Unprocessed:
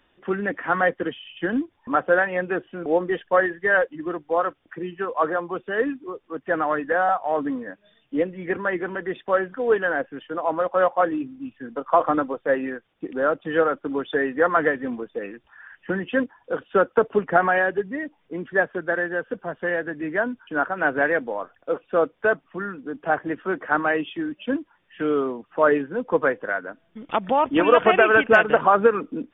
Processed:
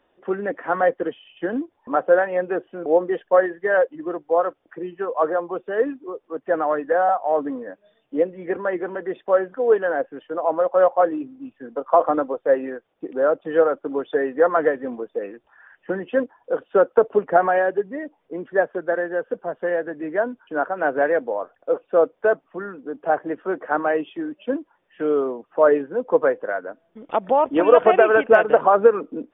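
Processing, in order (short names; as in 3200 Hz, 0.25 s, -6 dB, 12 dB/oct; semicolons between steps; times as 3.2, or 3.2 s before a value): bell 560 Hz +13.5 dB 2.2 oct; gain -9 dB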